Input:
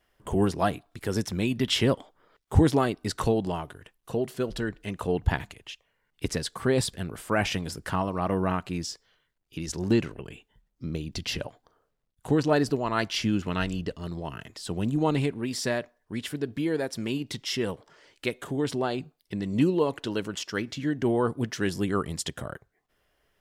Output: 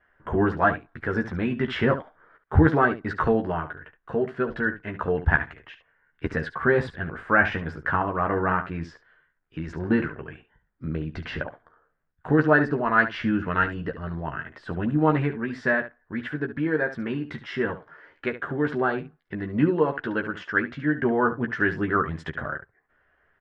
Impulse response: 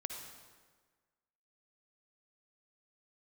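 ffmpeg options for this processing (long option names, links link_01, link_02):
-af "lowpass=frequency=1600:width_type=q:width=4,aecho=1:1:13|71:0.562|0.251"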